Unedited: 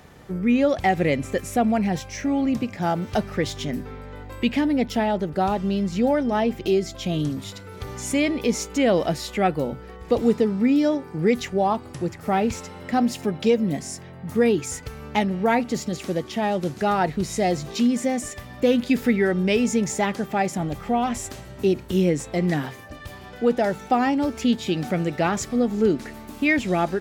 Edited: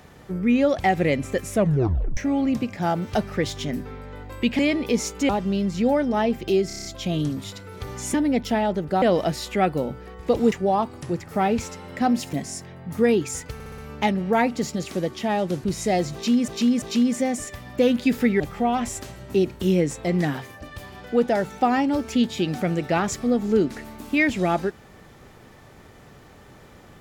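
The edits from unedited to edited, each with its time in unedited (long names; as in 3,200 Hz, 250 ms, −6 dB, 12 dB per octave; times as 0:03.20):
0:01.52: tape stop 0.65 s
0:04.59–0:05.47: swap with 0:08.14–0:08.84
0:06.85: stutter 0.03 s, 7 plays
0:10.34–0:11.44: remove
0:13.25–0:13.70: remove
0:14.91: stutter 0.06 s, 5 plays
0:16.77–0:17.16: remove
0:17.66–0:18.00: repeat, 3 plays
0:19.24–0:20.69: remove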